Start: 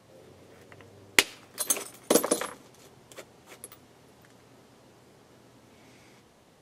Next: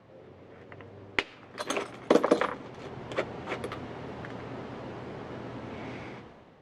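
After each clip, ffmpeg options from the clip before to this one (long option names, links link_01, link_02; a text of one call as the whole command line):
ffmpeg -i in.wav -af "lowpass=2400,dynaudnorm=framelen=110:gausssize=11:maxgain=14.5dB,alimiter=limit=-10.5dB:level=0:latency=1:release=323,volume=2dB" out.wav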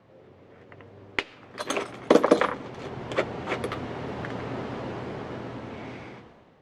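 ffmpeg -i in.wav -af "dynaudnorm=framelen=250:gausssize=13:maxgain=9dB,volume=-1.5dB" out.wav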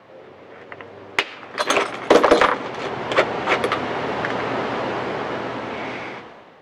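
ffmpeg -i in.wav -filter_complex "[0:a]asplit=2[link_01][link_02];[link_02]highpass=frequency=720:poles=1,volume=19dB,asoftclip=type=tanh:threshold=-4dB[link_03];[link_01][link_03]amix=inputs=2:normalize=0,lowpass=frequency=4200:poles=1,volume=-6dB,volume=1.5dB" out.wav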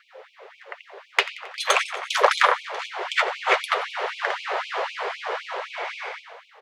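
ffmpeg -i in.wav -af "aecho=1:1:89|178|267|356|445|534:0.133|0.08|0.048|0.0288|0.0173|0.0104,afftfilt=real='re*gte(b*sr/1024,360*pow(2300/360,0.5+0.5*sin(2*PI*3.9*pts/sr)))':imag='im*gte(b*sr/1024,360*pow(2300/360,0.5+0.5*sin(2*PI*3.9*pts/sr)))':win_size=1024:overlap=0.75" out.wav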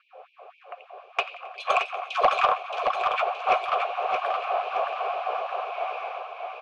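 ffmpeg -i in.wav -filter_complex "[0:a]asplit=3[link_01][link_02][link_03];[link_01]bandpass=frequency=730:width_type=q:width=8,volume=0dB[link_04];[link_02]bandpass=frequency=1090:width_type=q:width=8,volume=-6dB[link_05];[link_03]bandpass=frequency=2440:width_type=q:width=8,volume=-9dB[link_06];[link_04][link_05][link_06]amix=inputs=3:normalize=0,aeval=exprs='0.211*sin(PI/2*1.41*val(0)/0.211)':channel_layout=same,asplit=2[link_07][link_08];[link_08]aecho=0:1:622|1244|1866|2488|3110:0.562|0.236|0.0992|0.0417|0.0175[link_09];[link_07][link_09]amix=inputs=2:normalize=0,volume=1dB" out.wav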